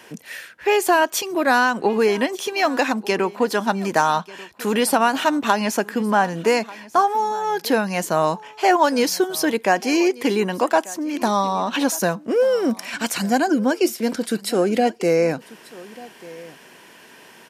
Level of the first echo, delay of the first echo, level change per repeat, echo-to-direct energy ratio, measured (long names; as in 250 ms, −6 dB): −20.5 dB, 1,190 ms, repeats not evenly spaced, −20.5 dB